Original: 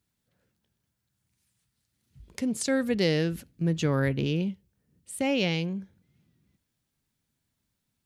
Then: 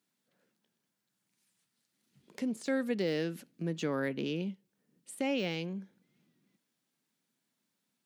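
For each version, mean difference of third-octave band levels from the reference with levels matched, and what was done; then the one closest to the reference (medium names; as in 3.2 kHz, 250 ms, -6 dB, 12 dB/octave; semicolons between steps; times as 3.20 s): 3.0 dB: high-pass 190 Hz 24 dB/octave; de-esser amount 85%; treble shelf 9.8 kHz -3.5 dB; in parallel at +2 dB: compression, threshold -40 dBFS, peak gain reduction 17 dB; on the sum: trim -7 dB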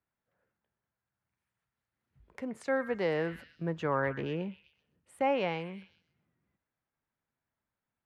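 6.0 dB: three-band isolator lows -13 dB, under 480 Hz, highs -23 dB, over 2 kHz; repeats whose band climbs or falls 127 ms, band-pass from 1.7 kHz, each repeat 0.7 oct, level -12 dB; dynamic bell 960 Hz, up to +7 dB, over -50 dBFS, Q 1.8; in parallel at +2 dB: gain riding 0.5 s; on the sum: trim -6 dB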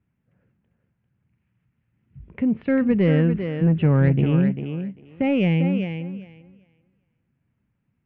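8.5 dB: steep low-pass 2.7 kHz 48 dB/octave; peaking EQ 140 Hz +9 dB 2.2 oct; saturation -11.5 dBFS, distortion -23 dB; thinning echo 396 ms, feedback 17%, high-pass 200 Hz, level -6.5 dB; trim +2.5 dB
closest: first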